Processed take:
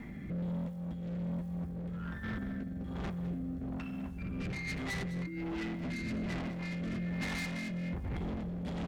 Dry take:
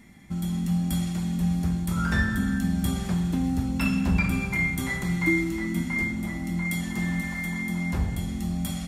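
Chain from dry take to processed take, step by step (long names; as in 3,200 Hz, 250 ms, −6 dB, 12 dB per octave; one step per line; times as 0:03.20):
low-pass filter 1,900 Hz 12 dB per octave
hum removal 101.9 Hz, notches 6
compressor whose output falls as the input rises −32 dBFS, ratio −0.5
bit reduction 12 bits
soft clipping −40 dBFS, distortion −4 dB
rotating-speaker cabinet horn 1.2 Hz
on a send: single-tap delay 206 ms −14 dB
on the sum: level +6.5 dB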